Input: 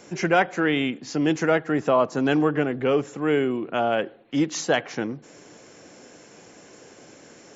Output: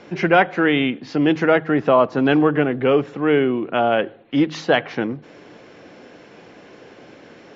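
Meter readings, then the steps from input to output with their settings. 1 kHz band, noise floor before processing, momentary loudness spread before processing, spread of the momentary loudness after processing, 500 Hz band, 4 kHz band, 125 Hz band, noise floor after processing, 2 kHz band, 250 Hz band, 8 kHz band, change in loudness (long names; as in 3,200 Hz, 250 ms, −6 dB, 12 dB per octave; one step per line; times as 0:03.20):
+5.0 dB, −50 dBFS, 6 LU, 6 LU, +5.0 dB, +4.0 dB, +4.5 dB, −46 dBFS, +5.0 dB, +5.0 dB, can't be measured, +5.0 dB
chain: low-pass filter 4,100 Hz 24 dB per octave
hum removal 52.46 Hz, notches 3
level +5 dB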